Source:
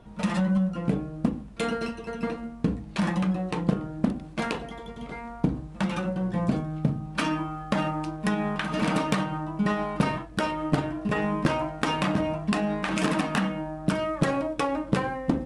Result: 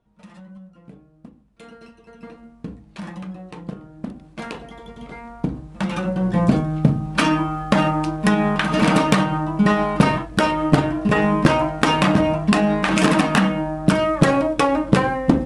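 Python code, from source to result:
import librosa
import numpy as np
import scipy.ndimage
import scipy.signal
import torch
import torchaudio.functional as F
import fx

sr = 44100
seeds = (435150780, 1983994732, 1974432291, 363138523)

y = fx.gain(x, sr, db=fx.line((1.35, -18.0), (2.49, -7.5), (3.89, -7.5), (4.89, 1.0), (5.62, 1.0), (6.38, 9.0)))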